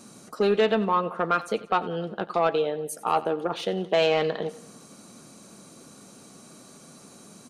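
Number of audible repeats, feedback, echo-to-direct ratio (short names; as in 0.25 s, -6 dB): 4, 53%, -16.5 dB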